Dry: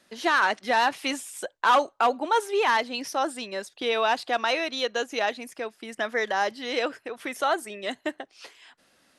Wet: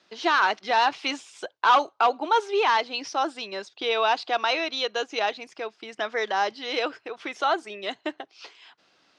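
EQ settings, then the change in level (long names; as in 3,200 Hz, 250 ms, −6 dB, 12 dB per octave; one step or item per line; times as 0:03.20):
loudspeaker in its box 140–5,700 Hz, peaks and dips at 170 Hz −4 dB, 240 Hz −10 dB, 550 Hz −6 dB, 1,800 Hz −6 dB
+2.5 dB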